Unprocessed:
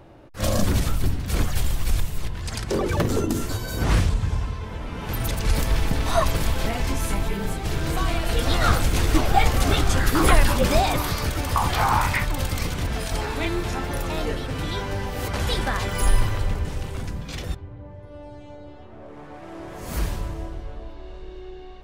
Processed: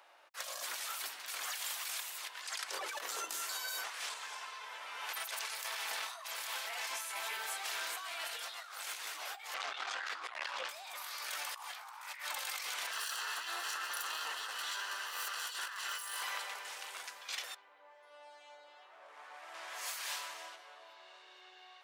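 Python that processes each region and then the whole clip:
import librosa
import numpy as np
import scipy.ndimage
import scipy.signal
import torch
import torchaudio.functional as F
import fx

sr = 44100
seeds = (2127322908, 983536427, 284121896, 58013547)

y = fx.chain(x, sr, fx.highpass(hz=49.0, slope=12),
    fx.air_absorb(metres=150.0),
    fx.transformer_sat(knee_hz=300.0), at=(9.54, 10.69))
y = fx.chain(y, sr, fx.lower_of_two(delay_ms=0.68),
    fx.notch(hz=2300.0, q=6.8), at=(12.91, 16.23))
y = fx.chain(y, sr, fx.lowpass(hz=3800.0, slope=6),
    fx.high_shelf(hz=2200.0, db=12.0), at=(19.54, 20.56))
y = scipy.signal.sosfilt(scipy.signal.bessel(4, 1200.0, 'highpass', norm='mag', fs=sr, output='sos'), y)
y = fx.over_compress(y, sr, threshold_db=-37.0, ratio=-1.0)
y = y * 10.0 ** (-5.0 / 20.0)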